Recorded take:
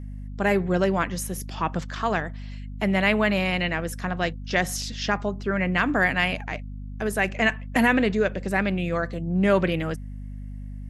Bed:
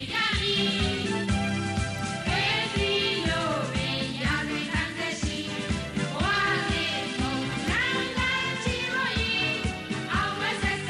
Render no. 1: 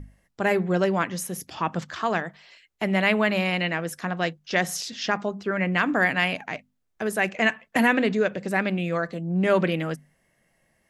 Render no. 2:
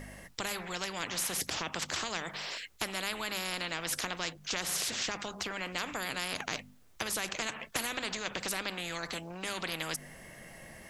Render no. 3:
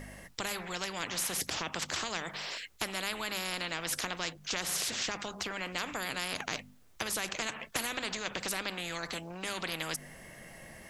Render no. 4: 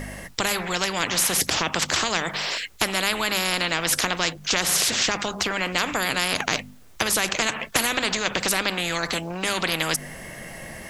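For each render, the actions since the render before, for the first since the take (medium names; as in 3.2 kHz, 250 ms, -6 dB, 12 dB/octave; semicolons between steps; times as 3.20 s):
hum notches 50/100/150/200/250 Hz
compression 3:1, threshold -29 dBFS, peak gain reduction 10.5 dB; spectrum-flattening compressor 4:1
no audible change
trim +12 dB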